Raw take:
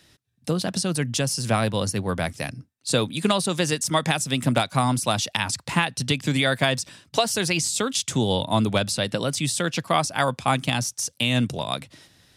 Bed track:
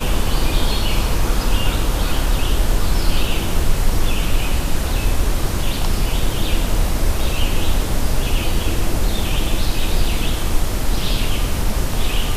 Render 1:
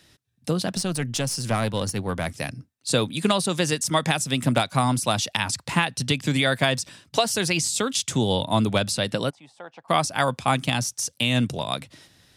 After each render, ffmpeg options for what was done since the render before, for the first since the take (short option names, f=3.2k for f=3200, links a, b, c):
-filter_complex "[0:a]asettb=1/sr,asplit=3[a][b][c];[a]atrim=end=0.724[d];[b]atrim=start=0.72:end=2.26,asetpts=PTS-STARTPTS,afade=t=in:d=0.004:c=qsin,afade=t=out:st=1.536:d=0.004:c=qsin,aeval=exprs='(tanh(5.01*val(0)+0.4)-tanh(0.4))/5.01':c=same[e];[c]atrim=start=2.256[f];[d][e]acrossfade=d=0.004:c1=hsin:c2=qsin[g];[g][f]acrossfade=d=0.004:c1=qsin:c2=hsin,asplit=3[h][i][j];[h]afade=t=out:st=9.29:d=0.02[k];[i]bandpass=f=810:t=q:w=4.7,afade=t=in:st=9.29:d=0.02,afade=t=out:st=9.88:d=0.02[l];[j]afade=t=in:st=9.88:d=0.02[m];[k][l][m]amix=inputs=3:normalize=0"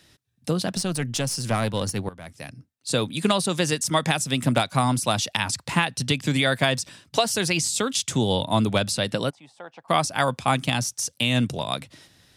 -filter_complex "[0:a]asplit=2[a][b];[a]atrim=end=2.09,asetpts=PTS-STARTPTS,afade=t=out:st=2.086:d=0.004:c=hsin:silence=0.11885[c];[b]atrim=start=2.09,asetpts=PTS-STARTPTS,afade=t=in:d=1.11:silence=0.11885[d];[c][d]concat=n=2:v=0:a=1"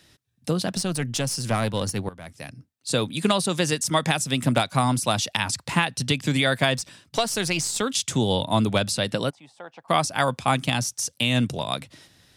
-filter_complex "[0:a]asettb=1/sr,asplit=3[a][b][c];[a]atrim=end=6.774[d];[b]atrim=start=6.77:end=7.82,asetpts=PTS-STARTPTS,afade=t=in:d=0.004:c=qsin,afade=t=out:st=1.046:d=0.004:c=qsin,aeval=exprs='(tanh(3.55*val(0)+0.45)-tanh(0.45))/3.55':c=same[e];[c]atrim=start=7.816[f];[d][e]acrossfade=d=0.004:c1=hsin:c2=qsin[g];[g][f]acrossfade=d=0.004:c1=qsin:c2=hsin"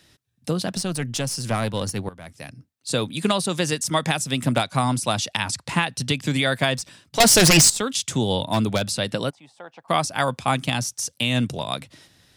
-filter_complex "[0:a]asettb=1/sr,asplit=3[a][b][c];[a]atrim=end=4.624[d];[b]atrim=start=4.62:end=5.87,asetpts=PTS-STARTPTS,afade=t=in:d=0.004:c=qsin,afade=t=out:st=1.246:d=0.004:c=qsin,lowpass=f=12k:w=0.5412,lowpass=f=12k:w=1.3066[e];[c]atrim=start=5.866[f];[d][e]acrossfade=d=0.004:c1=hsin:c2=qsin[g];[g][f]acrossfade=d=0.004:c1=qsin:c2=hsin,asettb=1/sr,asplit=3[h][i][j];[h]atrim=end=7.204[k];[i]atrim=start=7.2:end=7.7,asetpts=PTS-STARTPTS,afade=t=in:d=0.004:c=qsin,afade=t=out:st=0.496:d=0.004:c=qsin,aeval=exprs='0.355*sin(PI/2*3.98*val(0)/0.355)':c=same[l];[j]atrim=start=7.696[m];[k][l]acrossfade=d=0.004:c1=hsin:c2=qsin[n];[n][m]acrossfade=d=0.004:c1=qsin:c2=hsin,asettb=1/sr,asplit=3[o][p][q];[o]atrim=end=8.484[r];[p]atrim=start=8.48:end=8.9,asetpts=PTS-STARTPTS,afade=t=in:d=0.004:c=qsin,afade=t=out:st=0.416:d=0.004:c=qsin,aeval=exprs='0.224*(abs(mod(val(0)/0.224+3,4)-2)-1)':c=same[s];[q]atrim=start=8.896[t];[r][s]acrossfade=d=0.004:c1=hsin:c2=qsin[u];[u][t]acrossfade=d=0.004:c1=qsin:c2=hsin"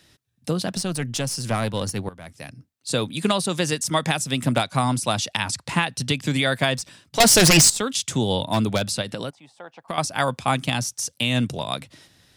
-filter_complex "[0:a]asettb=1/sr,asplit=3[a][b][c];[a]atrim=end=9.014[d];[b]atrim=start=9.01:end=9.98,asetpts=PTS-STARTPTS,afade=t=in:d=0.004:c=qsin,afade=t=out:st=0.966:d=0.004:c=qsin,acompressor=threshold=-25dB:ratio=5:attack=3.2:release=140:knee=1:detection=peak[e];[c]atrim=start=9.976[f];[d][e]acrossfade=d=0.004:c1=hsin:c2=qsin[g];[g][f]acrossfade=d=0.004:c1=qsin:c2=hsin"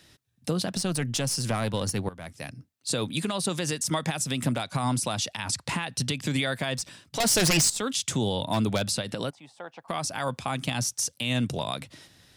-af "acompressor=threshold=-20dB:ratio=6,alimiter=limit=-16.5dB:level=0:latency=1:release=88"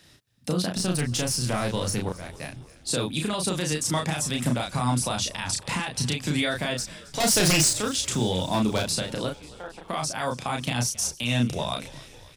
-filter_complex "[0:a]asplit=2[a][b];[b]adelay=33,volume=-3dB[c];[a][c]amix=inputs=2:normalize=0,asplit=7[d][e][f][g][h][i][j];[e]adelay=270,afreqshift=-49,volume=-20dB[k];[f]adelay=540,afreqshift=-98,volume=-23.9dB[l];[g]adelay=810,afreqshift=-147,volume=-27.8dB[m];[h]adelay=1080,afreqshift=-196,volume=-31.6dB[n];[i]adelay=1350,afreqshift=-245,volume=-35.5dB[o];[j]adelay=1620,afreqshift=-294,volume=-39.4dB[p];[d][k][l][m][n][o][p]amix=inputs=7:normalize=0"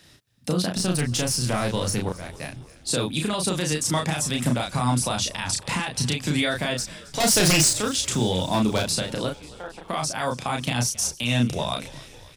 -af "volume=2dB"